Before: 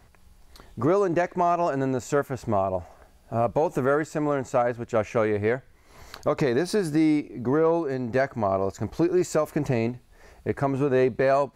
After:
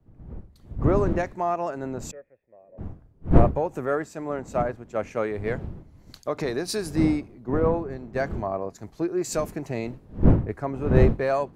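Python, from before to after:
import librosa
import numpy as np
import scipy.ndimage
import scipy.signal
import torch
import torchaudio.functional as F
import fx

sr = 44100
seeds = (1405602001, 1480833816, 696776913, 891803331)

y = fx.dmg_wind(x, sr, seeds[0], corner_hz=230.0, level_db=-28.0)
y = fx.formant_cascade(y, sr, vowel='e', at=(2.11, 2.78))
y = fx.band_widen(y, sr, depth_pct=100)
y = F.gain(torch.from_numpy(y), -3.5).numpy()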